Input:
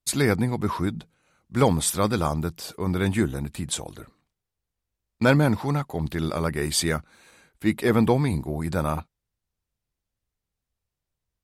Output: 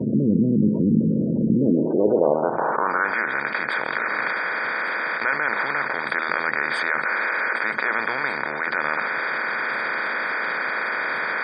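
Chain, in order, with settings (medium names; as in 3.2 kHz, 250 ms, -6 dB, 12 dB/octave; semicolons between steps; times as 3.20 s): spectral levelling over time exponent 0.2; gate with hold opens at -17 dBFS; in parallel at +3 dB: compressor with a negative ratio -24 dBFS, ratio -1; on the sum: band-pass sweep 210 Hz -> 1.8 kHz, 1.52–3.21 s; de-hum 80.06 Hz, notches 8; spectral gate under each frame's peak -20 dB strong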